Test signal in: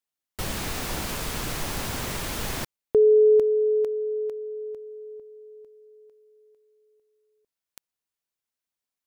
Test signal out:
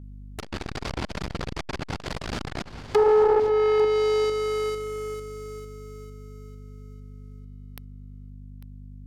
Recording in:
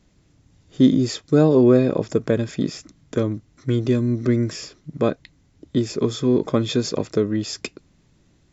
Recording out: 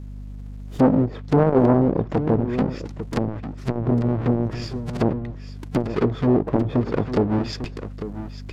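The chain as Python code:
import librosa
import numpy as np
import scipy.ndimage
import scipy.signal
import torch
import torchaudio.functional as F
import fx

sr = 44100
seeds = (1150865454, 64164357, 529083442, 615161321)

y = fx.halfwave_hold(x, sr)
y = fx.env_lowpass_down(y, sr, base_hz=560.0, full_db=-13.0)
y = fx.dynamic_eq(y, sr, hz=4700.0, q=5.7, threshold_db=-54.0, ratio=4.0, max_db=5)
y = fx.add_hum(y, sr, base_hz=50, snr_db=16)
y = y + 10.0 ** (-13.5 / 20.0) * np.pad(y, (int(848 * sr / 1000.0), 0))[:len(y)]
y = fx.transformer_sat(y, sr, knee_hz=490.0)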